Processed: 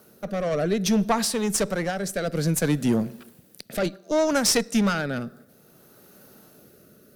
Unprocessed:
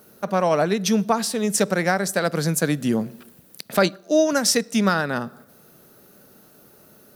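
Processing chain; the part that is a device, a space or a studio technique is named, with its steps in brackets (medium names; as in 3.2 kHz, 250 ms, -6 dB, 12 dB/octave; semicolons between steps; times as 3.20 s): overdriven rotary cabinet (valve stage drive 16 dB, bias 0.4; rotary cabinet horn 0.6 Hz); trim +2.5 dB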